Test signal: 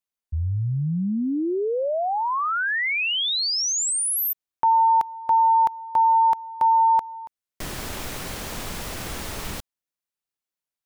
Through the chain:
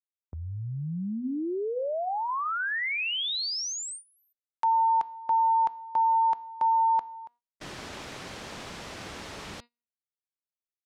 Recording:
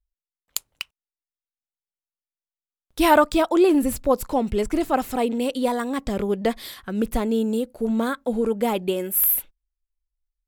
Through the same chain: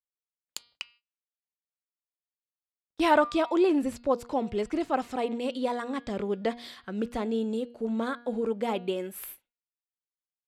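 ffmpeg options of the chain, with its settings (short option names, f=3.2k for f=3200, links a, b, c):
-af "lowpass=5.8k,bandreject=f=238.3:t=h:w=4,bandreject=f=476.6:t=h:w=4,bandreject=f=714.9:t=h:w=4,bandreject=f=953.2:t=h:w=4,bandreject=f=1.1915k:t=h:w=4,bandreject=f=1.4298k:t=h:w=4,bandreject=f=1.6681k:t=h:w=4,bandreject=f=1.9064k:t=h:w=4,bandreject=f=2.1447k:t=h:w=4,bandreject=f=2.383k:t=h:w=4,bandreject=f=2.6213k:t=h:w=4,bandreject=f=2.8596k:t=h:w=4,bandreject=f=3.0979k:t=h:w=4,bandreject=f=3.3362k:t=h:w=4,bandreject=f=3.5745k:t=h:w=4,bandreject=f=3.8128k:t=h:w=4,bandreject=f=4.0511k:t=h:w=4,bandreject=f=4.2894k:t=h:w=4,bandreject=f=4.5277k:t=h:w=4,bandreject=f=4.766k:t=h:w=4,bandreject=f=5.0043k:t=h:w=4,agate=range=-23dB:threshold=-31dB:ratio=16:release=431:detection=rms,highpass=f=150:p=1,volume=-5.5dB"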